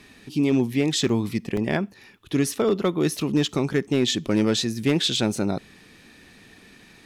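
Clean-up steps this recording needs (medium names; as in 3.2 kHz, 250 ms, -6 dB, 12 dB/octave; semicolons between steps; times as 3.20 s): clip repair -13 dBFS; interpolate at 1.09/1.57 s, 2.9 ms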